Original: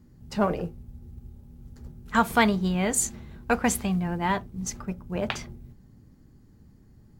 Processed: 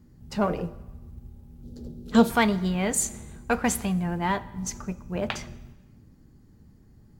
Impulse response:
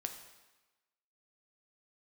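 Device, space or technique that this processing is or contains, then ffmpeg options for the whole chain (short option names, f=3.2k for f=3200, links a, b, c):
saturated reverb return: -filter_complex "[0:a]asplit=2[a][b];[1:a]atrim=start_sample=2205[c];[b][c]afir=irnorm=-1:irlink=0,asoftclip=type=tanh:threshold=-21.5dB,volume=-5dB[d];[a][d]amix=inputs=2:normalize=0,asettb=1/sr,asplit=3[e][f][g];[e]atrim=end=1.634[h];[f]atrim=start=1.63:end=2.3,asetpts=PTS-STARTPTS,afade=t=in:d=0.004:c=qsin,afade=t=out:st=0.666:d=0.004:c=qsin,equalizer=f=250:t=o:w=1:g=8,equalizer=f=500:t=o:w=1:g=12,equalizer=f=1k:t=o:w=1:g=-8,equalizer=f=2k:t=o:w=1:g=-8,equalizer=f=4k:t=o:w=1:g=9[i];[g]atrim=start=2.296[j];[h][i]acrossfade=d=0.004:c1=hsin:c2=qsin[k];[k][j]acrossfade=d=0.004:c1=qsin:c2=hsin,volume=-3dB"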